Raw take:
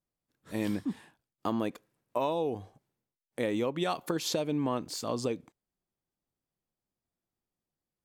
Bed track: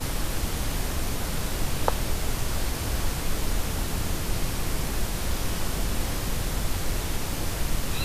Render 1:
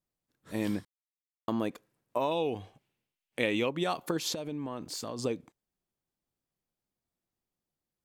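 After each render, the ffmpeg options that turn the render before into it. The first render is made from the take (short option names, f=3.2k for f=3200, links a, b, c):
-filter_complex "[0:a]asettb=1/sr,asplit=3[a][b][c];[a]atrim=end=2.314[d];[b]atrim=start=2.31:end=3.69,asetpts=PTS-STARTPTS,afade=t=in:d=0.004:c=qsin,afade=t=out:st=1.376:d=0.004:c=qsin,equalizer=f=2.7k:w=1.5:g=12.5[e];[c]atrim=start=3.686[f];[d][e]acrossfade=d=0.004:c1=hsin:c2=qsin[g];[g][f]acrossfade=d=0.004:c1=qsin:c2=hsin,asettb=1/sr,asplit=3[h][i][j];[h]atrim=end=4.344[k];[i]atrim=start=4.34:end=5.19,asetpts=PTS-STARTPTS,afade=t=in:d=0.004:c=qsin,afade=t=out:st=0.846:d=0.004:c=qsin,acompressor=threshold=-33dB:ratio=5:attack=3.2:release=140:knee=1:detection=peak[l];[j]atrim=start=5.186[m];[k][l]acrossfade=d=0.004:c1=hsin:c2=qsin[n];[n][m]acrossfade=d=0.004:c1=qsin:c2=hsin,asplit=3[o][p][q];[o]atrim=end=0.85,asetpts=PTS-STARTPTS,afade=t=out:st=0.846:d=0.004:c=hsin[r];[p]atrim=start=0.85:end=1.48,asetpts=PTS-STARTPTS,volume=0[s];[q]atrim=start=1.48,asetpts=PTS-STARTPTS,afade=t=in:d=0.004:c=hsin[t];[r][s][t]concat=n=3:v=0:a=1"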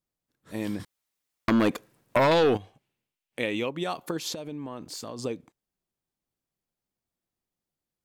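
-filter_complex "[0:a]asplit=3[a][b][c];[a]afade=t=out:st=0.79:d=0.02[d];[b]aeval=exprs='0.158*sin(PI/2*2.82*val(0)/0.158)':c=same,afade=t=in:st=0.79:d=0.02,afade=t=out:st=2.56:d=0.02[e];[c]afade=t=in:st=2.56:d=0.02[f];[d][e][f]amix=inputs=3:normalize=0"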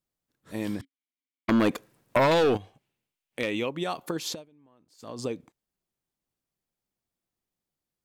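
-filter_complex "[0:a]asettb=1/sr,asplit=3[a][b][c];[a]atrim=end=0.814[d];[b]atrim=start=0.81:end=1.49,asetpts=PTS-STARTPTS,afade=t=in:d=0.004:c=qsin,afade=t=out:st=0.676:d=0.004:c=qsin,asplit=3[e][f][g];[e]bandpass=f=270:t=q:w=8,volume=0dB[h];[f]bandpass=f=2.29k:t=q:w=8,volume=-6dB[i];[g]bandpass=f=3.01k:t=q:w=8,volume=-9dB[j];[h][i][j]amix=inputs=3:normalize=0[k];[c]atrim=start=1.486[l];[d][k]acrossfade=d=0.004:c1=hsin:c2=qsin[m];[m][l]acrossfade=d=0.004:c1=qsin:c2=hsin,asettb=1/sr,asplit=3[n][o][p];[n]atrim=end=2.264[q];[o]atrim=start=2.26:end=3.6,asetpts=PTS-STARTPTS,afade=t=in:d=0.004:c=qsin,afade=t=out:st=1.336:d=0.004:c=qsin,asoftclip=type=hard:threshold=-18dB[r];[p]atrim=start=3.596[s];[q][r]acrossfade=d=0.004:c1=hsin:c2=qsin[t];[t][s]acrossfade=d=0.004:c1=qsin:c2=hsin,asplit=3[u][v][w];[u]atrim=end=4.46,asetpts=PTS-STARTPTS,afade=t=out:st=4.33:d=0.13:silence=0.0707946[x];[v]atrim=start=4.46:end=4.98,asetpts=PTS-STARTPTS,volume=-23dB[y];[w]atrim=start=4.98,asetpts=PTS-STARTPTS,afade=t=in:d=0.13:silence=0.0707946[z];[x][y][z]concat=n=3:v=0:a=1"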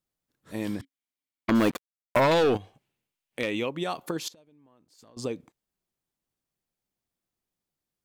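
-filter_complex "[0:a]asplit=3[a][b][c];[a]afade=t=out:st=1.54:d=0.02[d];[b]acrusher=bits=5:mix=0:aa=0.5,afade=t=in:st=1.54:d=0.02,afade=t=out:st=2.19:d=0.02[e];[c]afade=t=in:st=2.19:d=0.02[f];[d][e][f]amix=inputs=3:normalize=0,asettb=1/sr,asplit=3[g][h][i];[g]atrim=end=4.284[j];[h]atrim=start=4.28:end=5.17,asetpts=PTS-STARTPTS,afade=t=in:d=0.004:c=qsin,afade=t=out:st=0.886:d=0.004:c=qsin,acompressor=threshold=-52dB:ratio=6:attack=3.2:release=140:knee=1:detection=peak[k];[i]atrim=start=5.166[l];[j][k]acrossfade=d=0.004:c1=hsin:c2=qsin[m];[m][l]acrossfade=d=0.004:c1=qsin:c2=hsin"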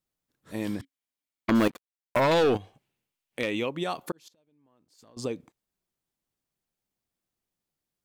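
-filter_complex "[0:a]asplit=3[a][b][c];[a]atrim=end=1.68,asetpts=PTS-STARTPTS,afade=t=out:st=1.676:d=0.004:c=hsin:silence=0.223872[d];[b]atrim=start=1.68:end=4.12,asetpts=PTS-STARTPTS,afade=t=in:d=0.7:silence=0.223872,afade=t=out:st=2.436:d=0.004:c=hsin[e];[c]atrim=start=4.12,asetpts=PTS-STARTPTS,afade=t=in:d=1.06[f];[d][e][f]concat=n=3:v=0:a=1"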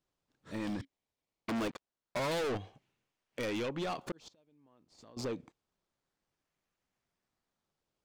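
-filter_complex "[0:a]acrossover=split=8000[a][b];[a]asoftclip=type=tanh:threshold=-32dB[c];[b]acrusher=samples=19:mix=1:aa=0.000001:lfo=1:lforange=19:lforate=0.26[d];[c][d]amix=inputs=2:normalize=0"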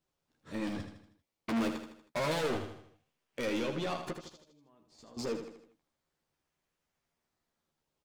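-filter_complex "[0:a]asplit=2[a][b];[b]adelay=13,volume=-6dB[c];[a][c]amix=inputs=2:normalize=0,asplit=2[d][e];[e]aecho=0:1:79|158|237|316|395:0.398|0.187|0.0879|0.0413|0.0194[f];[d][f]amix=inputs=2:normalize=0"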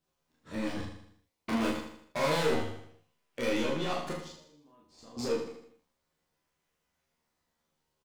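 -filter_complex "[0:a]asplit=2[a][b];[b]adelay=41,volume=-5dB[c];[a][c]amix=inputs=2:normalize=0,aecho=1:1:26|37:0.708|0.531"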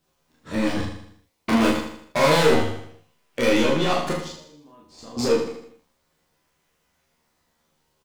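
-af "volume=11dB"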